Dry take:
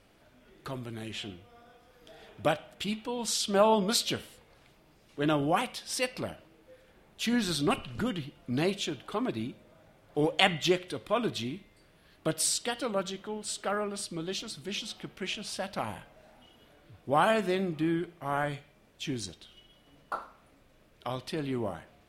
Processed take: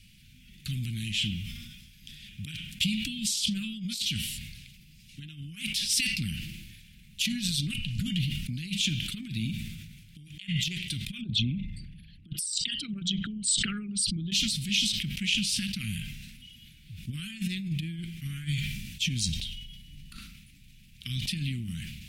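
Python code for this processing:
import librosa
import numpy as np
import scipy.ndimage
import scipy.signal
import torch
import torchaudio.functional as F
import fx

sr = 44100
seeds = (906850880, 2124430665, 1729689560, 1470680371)

y = fx.envelope_sharpen(x, sr, power=2.0, at=(11.21, 14.32))
y = fx.low_shelf(y, sr, hz=98.0, db=10.5, at=(19.28, 20.17))
y = fx.over_compress(y, sr, threshold_db=-34.0, ratio=-0.5)
y = scipy.signal.sosfilt(scipy.signal.ellip(3, 1.0, 60, [190.0, 2500.0], 'bandstop', fs=sr, output='sos'), y)
y = fx.sustainer(y, sr, db_per_s=38.0)
y = F.gain(torch.from_numpy(y), 6.0).numpy()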